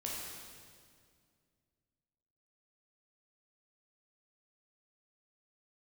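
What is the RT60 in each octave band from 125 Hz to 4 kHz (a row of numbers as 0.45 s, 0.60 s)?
2.8 s, 2.7 s, 2.2 s, 1.9 s, 1.8 s, 1.8 s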